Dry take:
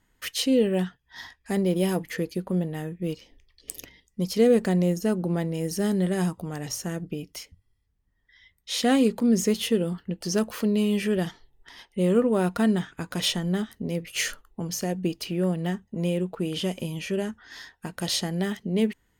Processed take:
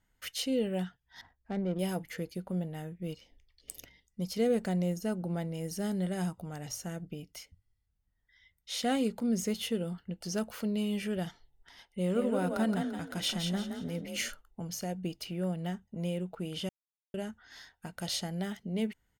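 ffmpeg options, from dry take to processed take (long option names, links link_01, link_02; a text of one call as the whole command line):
ffmpeg -i in.wav -filter_complex "[0:a]asettb=1/sr,asplit=3[link_01][link_02][link_03];[link_01]atrim=end=1.214[link_04];[link_02]atrim=start=1.21:end=1.79,asetpts=PTS-STARTPTS,afade=type=in:duration=0.004:curve=qsin,afade=type=out:start_time=0.576:duration=0.004:curve=qsin,adynamicsmooth=sensitivity=2:basefreq=860[link_05];[link_03]atrim=start=1.786[link_06];[link_04][link_05]acrossfade=duration=0.004:curve1=hsin:curve2=qsin[link_07];[link_07][link_06]acrossfade=duration=0.004:curve1=qsin:curve2=hsin,asplit=3[link_08][link_09][link_10];[link_08]afade=type=out:start_time=12.08:duration=0.02[link_11];[link_09]asplit=5[link_12][link_13][link_14][link_15][link_16];[link_13]adelay=171,afreqshift=33,volume=-5dB[link_17];[link_14]adelay=342,afreqshift=66,volume=-14.4dB[link_18];[link_15]adelay=513,afreqshift=99,volume=-23.7dB[link_19];[link_16]adelay=684,afreqshift=132,volume=-33.1dB[link_20];[link_12][link_17][link_18][link_19][link_20]amix=inputs=5:normalize=0,afade=type=in:start_time=12.08:duration=0.02,afade=type=out:start_time=14.28:duration=0.02[link_21];[link_10]afade=type=in:start_time=14.28:duration=0.02[link_22];[link_11][link_21][link_22]amix=inputs=3:normalize=0,asplit=3[link_23][link_24][link_25];[link_23]atrim=end=16.69,asetpts=PTS-STARTPTS,afade=type=out:start_time=16.686:duration=0.004:curve=hsin[link_26];[link_24]atrim=start=16.69:end=17.14,asetpts=PTS-STARTPTS,volume=0[link_27];[link_25]atrim=start=17.14,asetpts=PTS-STARTPTS,afade=type=in:duration=0.004:curve=hsin[link_28];[link_26][link_27][link_28]concat=n=3:v=0:a=1,aecho=1:1:1.4:0.34,volume=-8dB" out.wav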